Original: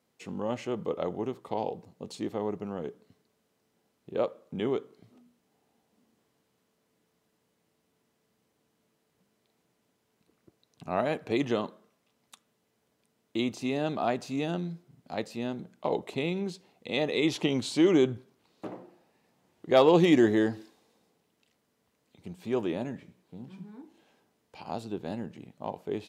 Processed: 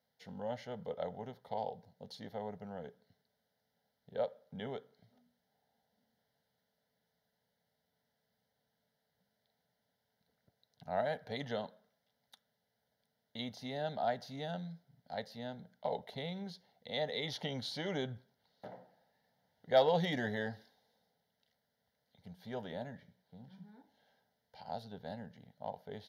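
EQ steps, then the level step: bass shelf 180 Hz -3 dB; static phaser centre 1.7 kHz, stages 8; -4.0 dB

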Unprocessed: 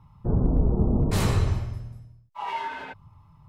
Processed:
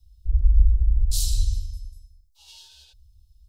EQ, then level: inverse Chebyshev band-stop 120–2200 Hz, stop band 40 dB; peaking EQ 920 Hz +4.5 dB 0.41 oct; +8.5 dB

